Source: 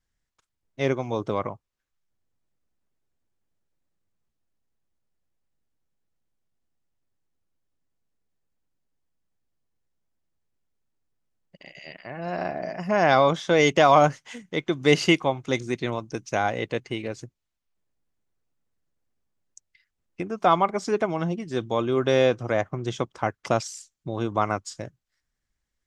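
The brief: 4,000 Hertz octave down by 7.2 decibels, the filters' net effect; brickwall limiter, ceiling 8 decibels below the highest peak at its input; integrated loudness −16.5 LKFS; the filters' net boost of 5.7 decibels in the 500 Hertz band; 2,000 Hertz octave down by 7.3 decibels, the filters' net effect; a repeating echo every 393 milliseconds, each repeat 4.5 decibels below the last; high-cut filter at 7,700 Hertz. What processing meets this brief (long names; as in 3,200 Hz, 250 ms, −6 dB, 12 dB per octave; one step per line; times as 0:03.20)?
low-pass filter 7,700 Hz
parametric band 500 Hz +7.5 dB
parametric band 2,000 Hz −8.5 dB
parametric band 4,000 Hz −6 dB
brickwall limiter −11 dBFS
repeating echo 393 ms, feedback 60%, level −4.5 dB
level +6.5 dB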